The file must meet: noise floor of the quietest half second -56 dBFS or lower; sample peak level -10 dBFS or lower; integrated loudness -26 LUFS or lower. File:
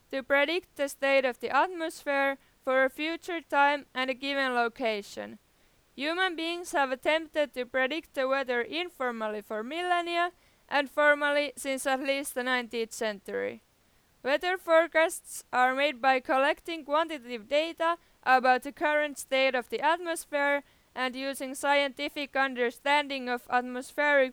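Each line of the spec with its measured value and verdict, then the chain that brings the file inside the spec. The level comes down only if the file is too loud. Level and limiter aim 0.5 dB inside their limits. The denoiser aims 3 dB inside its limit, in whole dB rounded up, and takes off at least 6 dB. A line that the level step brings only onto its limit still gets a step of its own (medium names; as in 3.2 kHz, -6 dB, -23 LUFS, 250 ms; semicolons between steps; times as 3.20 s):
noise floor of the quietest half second -66 dBFS: pass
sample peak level -11.0 dBFS: pass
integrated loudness -28.5 LUFS: pass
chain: none needed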